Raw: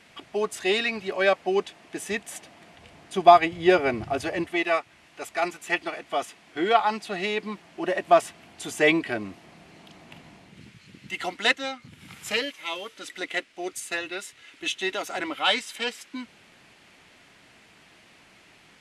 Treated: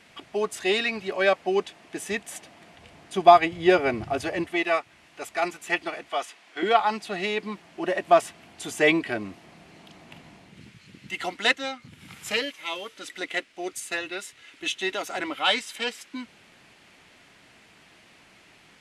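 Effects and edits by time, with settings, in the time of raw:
0:06.09–0:06.63: meter weighting curve A

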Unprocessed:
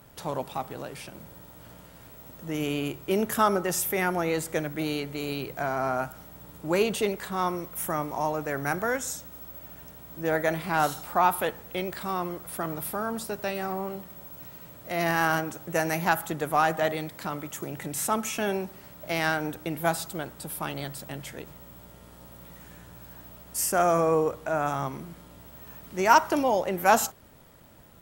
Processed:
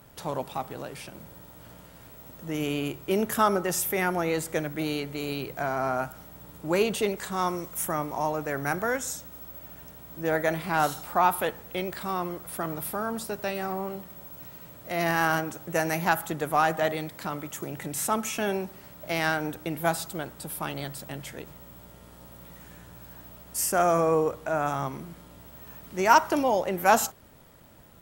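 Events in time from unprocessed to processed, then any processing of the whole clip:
0:07.17–0:07.85: parametric band 7,000 Hz +7 dB 0.88 octaves

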